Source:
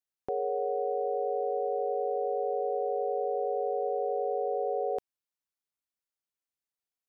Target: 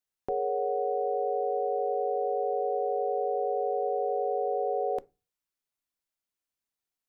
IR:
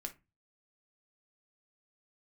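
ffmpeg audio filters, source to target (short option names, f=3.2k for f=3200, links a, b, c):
-filter_complex "[0:a]asplit=2[a][b];[b]lowshelf=f=210:g=9[c];[1:a]atrim=start_sample=2205[d];[c][d]afir=irnorm=-1:irlink=0,volume=-8.5dB[e];[a][e]amix=inputs=2:normalize=0"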